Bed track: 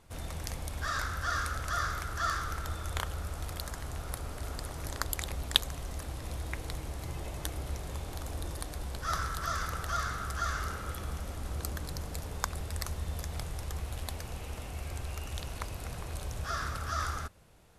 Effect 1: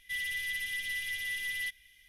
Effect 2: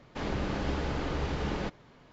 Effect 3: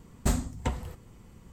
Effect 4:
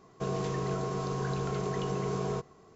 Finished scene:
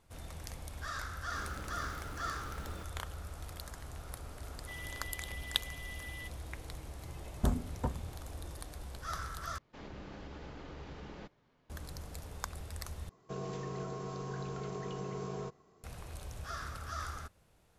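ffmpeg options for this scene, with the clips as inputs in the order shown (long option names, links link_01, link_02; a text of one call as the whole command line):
ffmpeg -i bed.wav -i cue0.wav -i cue1.wav -i cue2.wav -i cue3.wav -filter_complex "[2:a]asplit=2[link_01][link_02];[0:a]volume=-7dB[link_03];[link_01]acrusher=bits=3:mode=log:mix=0:aa=0.000001[link_04];[3:a]afwtdn=0.02[link_05];[link_02]alimiter=limit=-23dB:level=0:latency=1:release=71[link_06];[link_03]asplit=3[link_07][link_08][link_09];[link_07]atrim=end=9.584[link_10];[link_06]atrim=end=2.12,asetpts=PTS-STARTPTS,volume=-14.5dB[link_11];[link_08]atrim=start=11.696:end=13.094[link_12];[4:a]atrim=end=2.75,asetpts=PTS-STARTPTS,volume=-8dB[link_13];[link_09]atrim=start=15.836[link_14];[link_04]atrim=end=2.12,asetpts=PTS-STARTPTS,volume=-16.5dB,afade=type=in:duration=0.004:curve=hsin,afade=type=out:start_time=2.116:duration=0.004:curve=hsin,adelay=1150[link_15];[1:a]atrim=end=2.08,asetpts=PTS-STARTPTS,volume=-12dB,afade=type=in:duration=0.004:curve=hsin,afade=type=out:start_time=2.076:duration=0.004:curve=hsin,adelay=4580[link_16];[link_05]atrim=end=1.52,asetpts=PTS-STARTPTS,volume=-4dB,afade=type=in:duration=0.004:curve=hsin,afade=type=out:start_time=1.516:duration=0.004:curve=hsin,adelay=7180[link_17];[link_10][link_11]acrossfade=duration=0.004:curve1=hsin:curve2=hsin[link_18];[link_18][link_12]acrossfade=duration=0.004:curve1=hsin:curve2=hsin[link_19];[link_19][link_13]acrossfade=duration=0.004:curve1=hsin:curve2=hsin[link_20];[link_20][link_14]acrossfade=duration=0.004:curve1=hsin:curve2=hsin[link_21];[link_21][link_15][link_16][link_17]amix=inputs=4:normalize=0" out.wav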